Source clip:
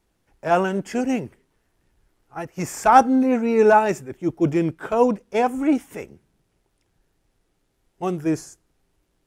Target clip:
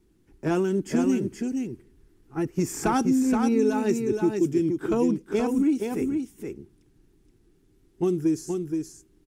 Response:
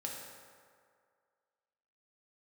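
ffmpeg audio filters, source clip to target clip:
-filter_complex "[0:a]lowshelf=frequency=460:width_type=q:width=3:gain=8.5,acrossover=split=3500[link_01][link_02];[link_01]acompressor=threshold=-19dB:ratio=6[link_03];[link_02]aecho=1:1:4.4:0.72[link_04];[link_03][link_04]amix=inputs=2:normalize=0,aecho=1:1:473:0.562,volume=-2.5dB"

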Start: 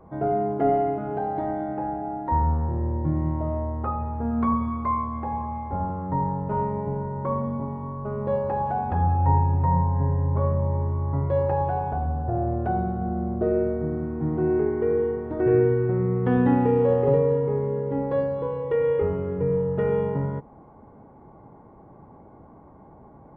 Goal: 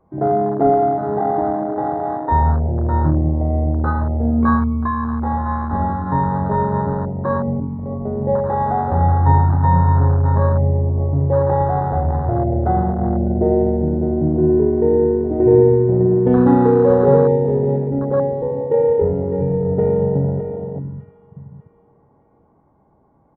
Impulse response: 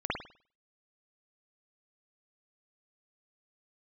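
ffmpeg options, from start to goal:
-filter_complex "[0:a]asplit=2[link_01][link_02];[link_02]aecho=0:1:606|1212|1818|2424:0.355|0.142|0.0568|0.0227[link_03];[link_01][link_03]amix=inputs=2:normalize=0,afwtdn=0.0562,asettb=1/sr,asplit=3[link_04][link_05][link_06];[link_04]atrim=end=4.804[link_07];[link_05]atrim=start=4.8:end=5.26,asetpts=PTS-STARTPTS,afade=type=in:duration=0.004:curve=qsin,afade=type=out:start_time=0.456:duration=0.004:curve=qsin,acompressor=threshold=-24dB:ratio=6[link_08];[link_06]atrim=start=5.256[link_09];[link_07][link_08]acrossfade=duration=0.004:curve1=hsin:curve2=qsin[link_10];[link_10][link_09]acrossfade=duration=0.004:curve1=qsin:curve2=hsin,asettb=1/sr,asplit=3[link_11][link_12][link_13];[link_11]atrim=end=16.274[link_14];[link_12]atrim=start=16.27:end=17.89,asetpts=PTS-STARTPTS,afade=type=in:duration=0.004:curve=qsin,afade=type=out:start_time=1.616:duration=0.004:curve=qsin,highshelf=frequency=2500:gain=9[link_15];[link_13]atrim=start=17.886[link_16];[link_14][link_15]acrossfade=duration=0.004:curve1=hsin:curve2=qsin[link_17];[link_17][link_16]acrossfade=duration=0.004:curve1=qsin:curve2=hsin,volume=7dB"

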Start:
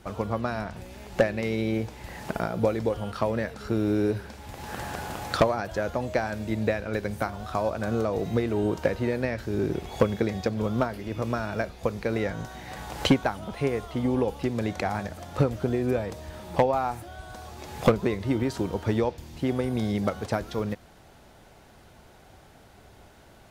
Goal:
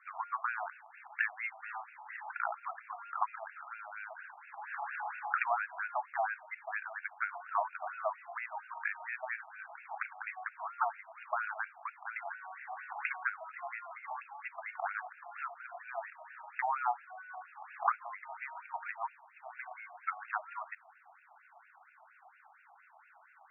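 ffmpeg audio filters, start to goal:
ffmpeg -i in.wav -filter_complex "[0:a]asplit=3[link_01][link_02][link_03];[link_01]afade=type=out:start_time=1.62:duration=0.02[link_04];[link_02]aeval=exprs='0.0266*(abs(mod(val(0)/0.0266+3,4)-2)-1)':channel_layout=same,afade=type=in:start_time=1.62:duration=0.02,afade=type=out:start_time=2.3:duration=0.02[link_05];[link_03]afade=type=in:start_time=2.3:duration=0.02[link_06];[link_04][link_05][link_06]amix=inputs=3:normalize=0,afftfilt=real='re*between(b*sr/1024,890*pow(2000/890,0.5+0.5*sin(2*PI*4.3*pts/sr))/1.41,890*pow(2000/890,0.5+0.5*sin(2*PI*4.3*pts/sr))*1.41)':imag='im*between(b*sr/1024,890*pow(2000/890,0.5+0.5*sin(2*PI*4.3*pts/sr))/1.41,890*pow(2000/890,0.5+0.5*sin(2*PI*4.3*pts/sr))*1.41)':win_size=1024:overlap=0.75,volume=1dB" out.wav

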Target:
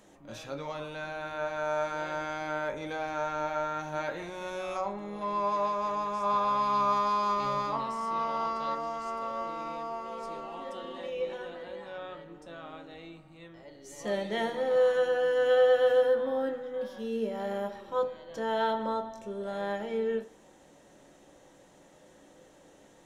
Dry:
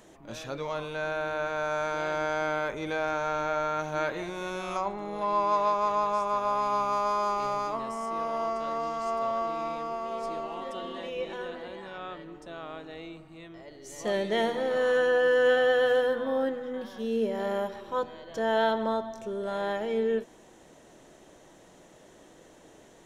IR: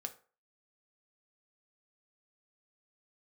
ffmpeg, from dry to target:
-filter_complex "[0:a]asettb=1/sr,asplit=3[link_01][link_02][link_03];[link_01]atrim=end=6.234[link_04];[link_02]atrim=start=6.23:end=8.75,asetpts=PTS-STARTPTS,afade=type=in:duration=0.004:curve=qsin,afade=type=out:start_time=2.516:duration=0.004:curve=qsin,equalizer=frequency=125:width_type=o:width=1:gain=8,equalizer=frequency=1000:width_type=o:width=1:gain=6,equalizer=frequency=4000:width_type=o:width=1:gain=9,equalizer=frequency=8000:width_type=o:width=1:gain=-4[link_05];[link_03]atrim=start=8.746[link_06];[link_04][link_05]acrossfade=duration=0.004:curve1=hsin:curve2=qsin[link_07];[link_07][link_06]acrossfade=duration=0.004:curve1=qsin:curve2=hsin[link_08];[1:a]atrim=start_sample=2205,asetrate=48510,aresample=44100[link_09];[link_08][link_09]afir=irnorm=-1:irlink=0"

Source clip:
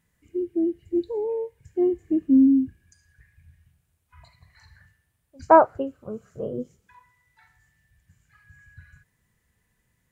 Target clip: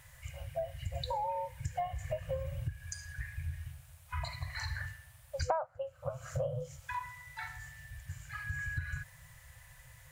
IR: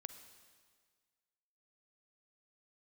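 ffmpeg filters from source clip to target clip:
-af "afftfilt=real='re*(1-between(b*sr/4096,160,500))':imag='im*(1-between(b*sr/4096,160,500))':win_size=4096:overlap=0.75,acompressor=threshold=-48dB:ratio=12,volume=16dB"

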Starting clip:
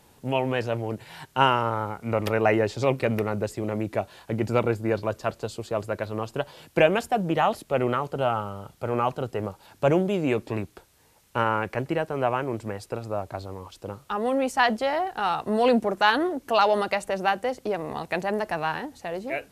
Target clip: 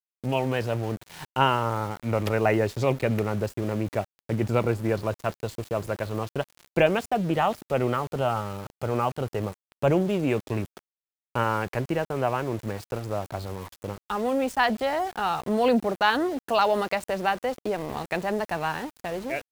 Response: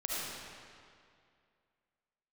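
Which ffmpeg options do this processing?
-filter_complex "[0:a]lowshelf=frequency=120:gain=7.5,asplit=2[link_01][link_02];[link_02]acompressor=threshold=-35dB:ratio=12,volume=-2.5dB[link_03];[link_01][link_03]amix=inputs=2:normalize=0,aeval=exprs='val(0)*gte(abs(val(0)),0.0178)':channel_layout=same,volume=-2.5dB"

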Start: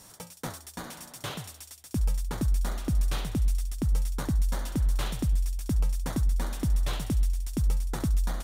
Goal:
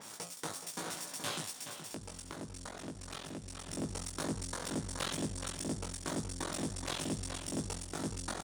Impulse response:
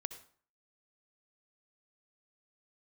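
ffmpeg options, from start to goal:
-filter_complex "[0:a]aresample=22050,aresample=44100,aeval=exprs='max(val(0),0)':channel_layout=same,highpass=190,asplit=2[link_01][link_02];[link_02]adelay=423,lowpass=frequency=4500:poles=1,volume=-8dB,asplit=2[link_03][link_04];[link_04]adelay=423,lowpass=frequency=4500:poles=1,volume=0.33,asplit=2[link_05][link_06];[link_06]adelay=423,lowpass=frequency=4500:poles=1,volume=0.33,asplit=2[link_07][link_08];[link_08]adelay=423,lowpass=frequency=4500:poles=1,volume=0.33[link_09];[link_01][link_03][link_05][link_07][link_09]amix=inputs=5:normalize=0,asplit=3[link_10][link_11][link_12];[link_10]afade=type=out:start_time=1.51:duration=0.02[link_13];[link_11]acompressor=threshold=-49dB:ratio=3,afade=type=in:start_time=1.51:duration=0.02,afade=type=out:start_time=3.67:duration=0.02[link_14];[link_12]afade=type=in:start_time=3.67:duration=0.02[link_15];[link_13][link_14][link_15]amix=inputs=3:normalize=0,alimiter=level_in=4.5dB:limit=-24dB:level=0:latency=1:release=245,volume=-4.5dB,asplit=2[link_16][link_17];[link_17]adelay=19,volume=-3dB[link_18];[link_16][link_18]amix=inputs=2:normalize=0,acompressor=mode=upward:threshold=-43dB:ratio=2.5,adynamicequalizer=threshold=0.00282:dfrequency=4000:dqfactor=0.7:tfrequency=4000:tqfactor=0.7:attack=5:release=100:ratio=0.375:range=2.5:mode=boostabove:tftype=highshelf,volume=2dB"

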